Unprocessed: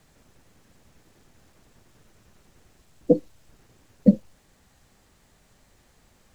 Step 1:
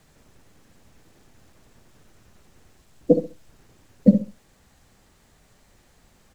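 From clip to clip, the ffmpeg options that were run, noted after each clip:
-filter_complex "[0:a]asplit=2[a][b];[b]adelay=67,lowpass=f=2k:p=1,volume=-9dB,asplit=2[c][d];[d]adelay=67,lowpass=f=2k:p=1,volume=0.24,asplit=2[e][f];[f]adelay=67,lowpass=f=2k:p=1,volume=0.24[g];[a][c][e][g]amix=inputs=4:normalize=0,volume=1.5dB"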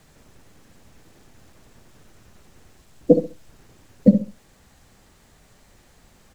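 -af "alimiter=limit=-4.5dB:level=0:latency=1:release=337,volume=3.5dB"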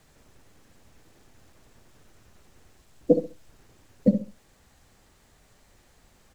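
-af "equalizer=f=180:w=1.5:g=-3,volume=-4.5dB"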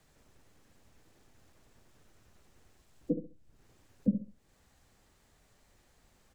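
-filter_complex "[0:a]acrossover=split=380[a][b];[b]acompressor=threshold=-51dB:ratio=6[c];[a][c]amix=inputs=2:normalize=0,volume=-7dB"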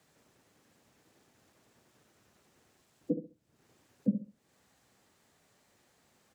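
-af "highpass=140"

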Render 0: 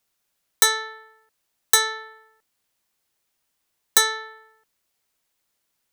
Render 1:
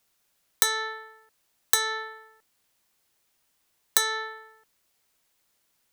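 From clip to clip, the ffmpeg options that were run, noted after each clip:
-af "acompressor=threshold=-22dB:ratio=10,volume=3.5dB"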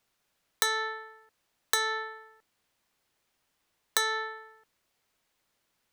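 -af "highshelf=f=5.6k:g=-10"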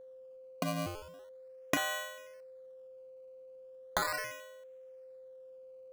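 -af "afreqshift=170,acrusher=samples=17:mix=1:aa=0.000001:lfo=1:lforange=17:lforate=0.38,aeval=exprs='val(0)+0.00562*sin(2*PI*520*n/s)':c=same,volume=-4.5dB"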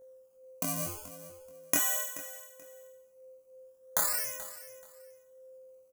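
-af "aexciter=amount=7.5:drive=3.9:freq=5.7k,flanger=delay=19.5:depth=5.7:speed=0.36,aecho=1:1:431|862:0.158|0.0349"

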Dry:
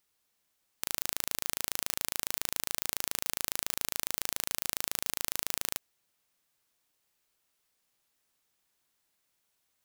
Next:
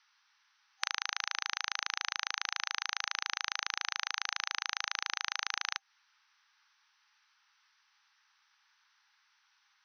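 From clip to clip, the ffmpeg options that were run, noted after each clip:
-af "afftfilt=real='re*between(b*sr/4096,790,6200)':imag='im*between(b*sr/4096,790,6200)':win_size=4096:overlap=0.75,equalizer=f=1.5k:t=o:w=0.91:g=7.5,acompressor=threshold=-38dB:ratio=6,volume=9dB"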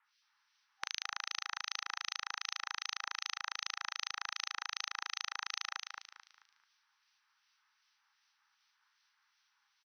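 -filter_complex "[0:a]aeval=exprs='0.398*(cos(1*acos(clip(val(0)/0.398,-1,1)))-cos(1*PI/2))+0.0316*(cos(3*acos(clip(val(0)/0.398,-1,1)))-cos(3*PI/2))':c=same,acrossover=split=2100[a][b];[a]aeval=exprs='val(0)*(1-1/2+1/2*cos(2*PI*2.6*n/s))':c=same[c];[b]aeval=exprs='val(0)*(1-1/2-1/2*cos(2*PI*2.6*n/s))':c=same[d];[c][d]amix=inputs=2:normalize=0,asplit=2[e][f];[f]aecho=0:1:219|438|657|876:0.562|0.191|0.065|0.0221[g];[e][g]amix=inputs=2:normalize=0,volume=1dB"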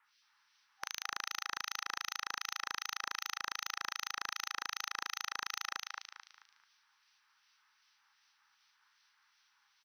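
-af "asoftclip=type=tanh:threshold=-28dB,volume=4dB"

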